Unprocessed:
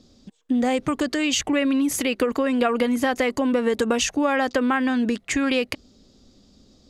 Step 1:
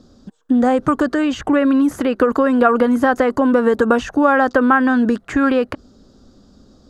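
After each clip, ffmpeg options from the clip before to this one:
-filter_complex "[0:a]acrossover=split=2900[s0][s1];[s1]acompressor=threshold=0.0126:ratio=4:attack=1:release=60[s2];[s0][s2]amix=inputs=2:normalize=0,highshelf=f=1800:t=q:w=3:g=-6,volume=2.11"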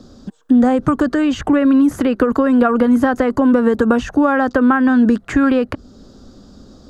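-filter_complex "[0:a]acrossover=split=240[s0][s1];[s1]acompressor=threshold=0.0158:ratio=1.5[s2];[s0][s2]amix=inputs=2:normalize=0,volume=2.11"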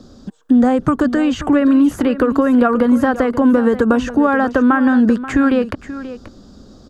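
-af "aecho=1:1:533:0.2"

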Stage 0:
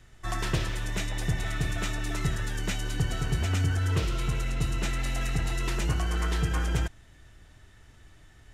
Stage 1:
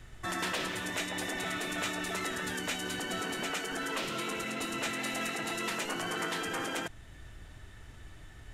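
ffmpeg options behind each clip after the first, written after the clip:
-filter_complex "[0:a]afftfilt=real='re*lt(hypot(re,im),0.1)':imag='im*lt(hypot(re,im),0.1)':win_size=1024:overlap=0.75,equalizer=f=5700:t=o:w=0.72:g=-3.5,asplit=2[s0][s1];[s1]alimiter=level_in=2.11:limit=0.0631:level=0:latency=1:release=365,volume=0.473,volume=1[s2];[s0][s2]amix=inputs=2:normalize=0,volume=0.794"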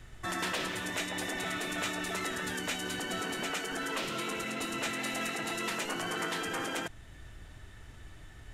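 -af anull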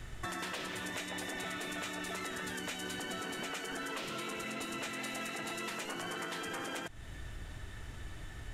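-af "acompressor=threshold=0.00794:ratio=6,volume=1.68"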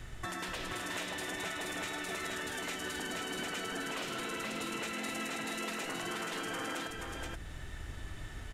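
-af "aecho=1:1:477:0.708"

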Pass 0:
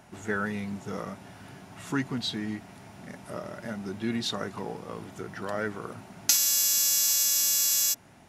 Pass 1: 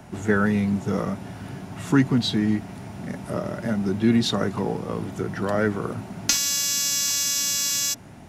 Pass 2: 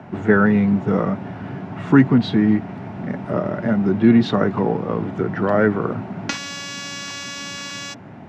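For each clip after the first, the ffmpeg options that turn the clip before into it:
-filter_complex "[0:a]lowshelf=f=460:g=8.5,acrossover=split=190|910|5900[s0][s1][s2][s3];[s3]asoftclip=type=hard:threshold=0.141[s4];[s0][s1][s2][s4]amix=inputs=4:normalize=0,acrossover=split=7500[s5][s6];[s6]acompressor=threshold=0.0178:ratio=4:attack=1:release=60[s7];[s5][s7]amix=inputs=2:normalize=0,volume=1.78"
-af "highpass=110,lowpass=2100,volume=2.11"

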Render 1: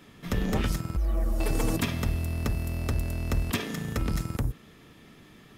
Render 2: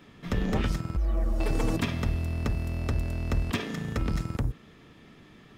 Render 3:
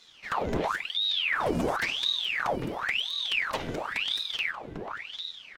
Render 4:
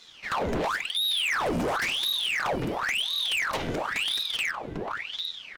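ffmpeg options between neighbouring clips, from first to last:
-af "equalizer=f=13000:t=o:w=1.2:g=-12.5"
-filter_complex "[0:a]asplit=2[s0][s1];[s1]adelay=797,lowpass=f=2000:p=1,volume=0.447,asplit=2[s2][s3];[s3]adelay=797,lowpass=f=2000:p=1,volume=0.47,asplit=2[s4][s5];[s5]adelay=797,lowpass=f=2000:p=1,volume=0.47,asplit=2[s6][s7];[s7]adelay=797,lowpass=f=2000:p=1,volume=0.47,asplit=2[s8][s9];[s9]adelay=797,lowpass=f=2000:p=1,volume=0.47,asplit=2[s10][s11];[s11]adelay=797,lowpass=f=2000:p=1,volume=0.47[s12];[s0][s2][s4][s6][s8][s10][s12]amix=inputs=7:normalize=0,aeval=exprs='val(0)*sin(2*PI*2000*n/s+2000*0.9/0.95*sin(2*PI*0.95*n/s))':c=same"
-af "volume=25.1,asoftclip=hard,volume=0.0398,volume=1.68"

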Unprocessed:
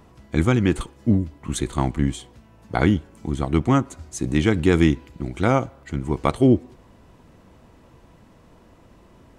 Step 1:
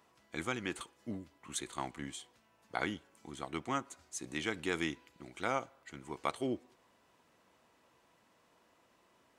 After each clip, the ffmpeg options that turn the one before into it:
-af "highpass=f=1100:p=1,volume=0.376"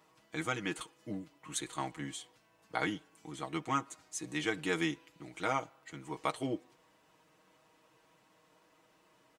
-af "aecho=1:1:6.4:0.75"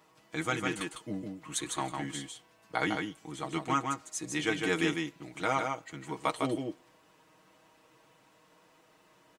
-af "aecho=1:1:153:0.596,volume=1.41"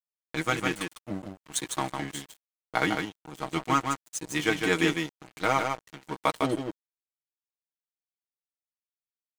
-af "aeval=exprs='sgn(val(0))*max(abs(val(0))-0.00841,0)':c=same,volume=2"

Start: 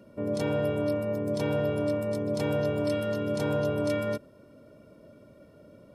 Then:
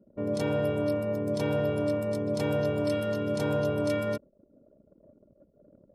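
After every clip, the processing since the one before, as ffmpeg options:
-af "anlmdn=0.0251"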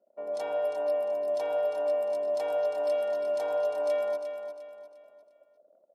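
-filter_complex "[0:a]highpass=f=690:t=q:w=4.9,asplit=2[s0][s1];[s1]aecho=0:1:352|704|1056|1408:0.376|0.143|0.0543|0.0206[s2];[s0][s2]amix=inputs=2:normalize=0,volume=0.422"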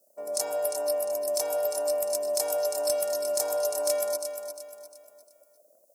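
-af "aexciter=amount=11.5:drive=8.9:freq=5000,volume=7.08,asoftclip=hard,volume=0.141"

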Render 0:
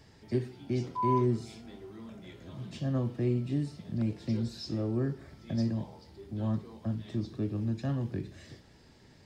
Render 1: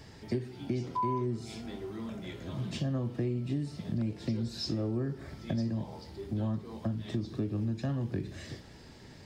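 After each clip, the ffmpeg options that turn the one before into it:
-af "acompressor=threshold=0.0158:ratio=5,volume=2.11"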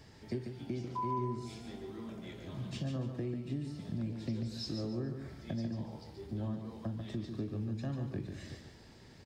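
-af "aecho=1:1:143|286|429|572:0.447|0.143|0.0457|0.0146,volume=0.531"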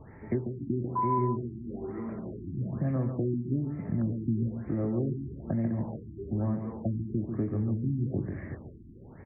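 -af "aexciter=amount=5.5:drive=8.2:freq=2600,asuperstop=centerf=5000:order=20:qfactor=0.58,afftfilt=real='re*lt(b*sr/1024,360*pow(3200/360,0.5+0.5*sin(2*PI*1.1*pts/sr)))':imag='im*lt(b*sr/1024,360*pow(3200/360,0.5+0.5*sin(2*PI*1.1*pts/sr)))':win_size=1024:overlap=0.75,volume=2.51"

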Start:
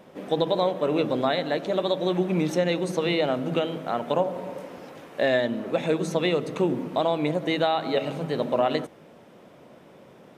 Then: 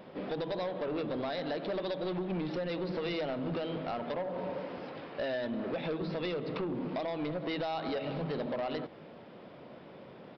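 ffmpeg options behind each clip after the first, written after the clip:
-af "acompressor=threshold=0.0447:ratio=6,aresample=11025,asoftclip=type=tanh:threshold=0.0335,aresample=44100"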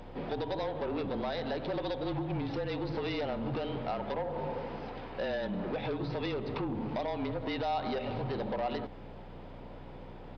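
-af "superequalizer=9b=1.78:15b=3.55,aeval=exprs='val(0)+0.00447*(sin(2*PI*60*n/s)+sin(2*PI*2*60*n/s)/2+sin(2*PI*3*60*n/s)/3+sin(2*PI*4*60*n/s)/4+sin(2*PI*5*60*n/s)/5)':c=same,afreqshift=-32"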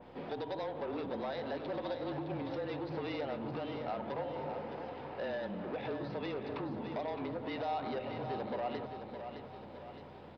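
-filter_complex "[0:a]highpass=f=190:p=1,asplit=2[s0][s1];[s1]aecho=0:1:614|1228|1842|2456|3070|3684:0.398|0.199|0.0995|0.0498|0.0249|0.0124[s2];[s0][s2]amix=inputs=2:normalize=0,adynamicequalizer=threshold=0.00224:dfrequency=2700:dqfactor=0.7:tfrequency=2700:tqfactor=0.7:attack=5:release=100:ratio=0.375:range=2.5:mode=cutabove:tftype=highshelf,volume=0.668"

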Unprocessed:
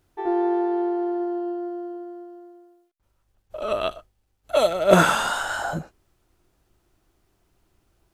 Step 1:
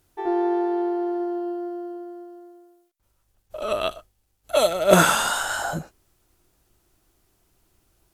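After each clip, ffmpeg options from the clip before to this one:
-af "aemphasis=mode=production:type=cd"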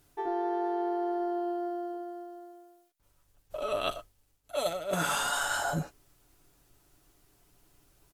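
-af "aecho=1:1:7:0.47,areverse,acompressor=threshold=0.0447:ratio=12,areverse"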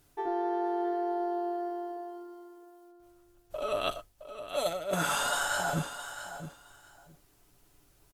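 -af "aecho=1:1:666|1332:0.282|0.0479"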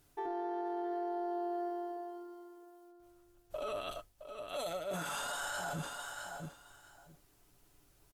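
-af "alimiter=level_in=1.5:limit=0.0631:level=0:latency=1:release=27,volume=0.668,volume=0.708"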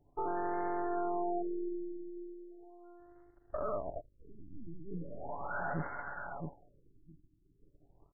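-af "aeval=exprs='if(lt(val(0),0),0.251*val(0),val(0))':c=same,afftfilt=real='re*lt(b*sr/1024,350*pow(2200/350,0.5+0.5*sin(2*PI*0.38*pts/sr)))':imag='im*lt(b*sr/1024,350*pow(2200/350,0.5+0.5*sin(2*PI*0.38*pts/sr)))':win_size=1024:overlap=0.75,volume=2.11"

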